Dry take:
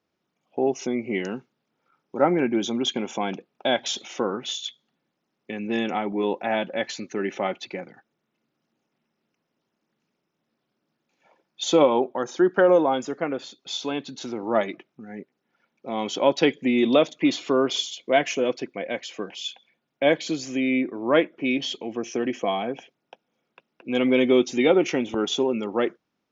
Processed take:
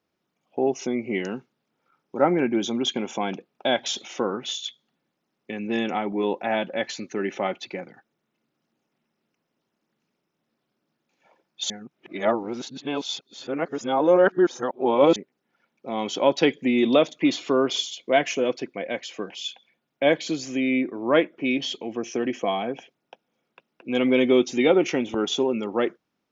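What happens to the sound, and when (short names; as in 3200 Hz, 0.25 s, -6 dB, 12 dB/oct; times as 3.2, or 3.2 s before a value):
11.7–15.16 reverse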